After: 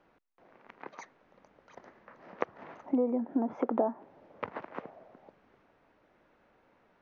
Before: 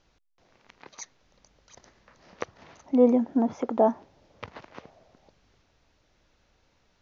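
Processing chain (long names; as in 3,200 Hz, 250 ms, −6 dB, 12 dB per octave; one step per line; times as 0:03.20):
downward compressor 16 to 1, threshold −29 dBFS, peak gain reduction 16.5 dB
three-way crossover with the lows and the highs turned down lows −18 dB, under 170 Hz, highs −24 dB, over 2,200 Hz
level +5 dB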